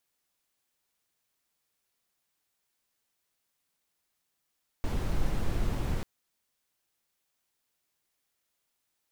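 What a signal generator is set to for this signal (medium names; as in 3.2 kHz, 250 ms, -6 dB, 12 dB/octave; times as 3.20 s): noise brown, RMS -27.5 dBFS 1.19 s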